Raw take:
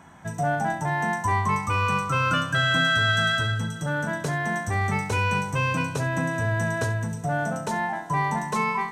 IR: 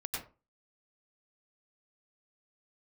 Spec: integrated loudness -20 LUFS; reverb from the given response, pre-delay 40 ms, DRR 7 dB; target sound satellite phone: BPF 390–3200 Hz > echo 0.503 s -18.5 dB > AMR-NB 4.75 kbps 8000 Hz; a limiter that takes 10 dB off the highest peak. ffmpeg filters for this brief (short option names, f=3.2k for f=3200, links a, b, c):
-filter_complex "[0:a]alimiter=limit=-21.5dB:level=0:latency=1,asplit=2[a][b];[1:a]atrim=start_sample=2205,adelay=40[c];[b][c]afir=irnorm=-1:irlink=0,volume=-9dB[d];[a][d]amix=inputs=2:normalize=0,highpass=390,lowpass=3.2k,aecho=1:1:503:0.119,volume=13dB" -ar 8000 -c:a libopencore_amrnb -b:a 4750